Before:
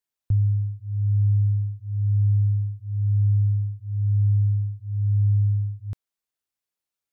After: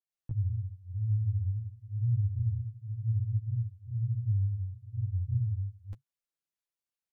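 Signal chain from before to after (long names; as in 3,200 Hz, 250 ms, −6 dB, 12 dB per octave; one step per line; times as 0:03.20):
dynamic equaliser 120 Hz, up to +5 dB, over −41 dBFS, Q 7.3
granular cloud 254 ms, grains 16 per second, spray 16 ms, pitch spread up and down by 3 semitones
comb filter 5.9 ms, depth 44%
level −3.5 dB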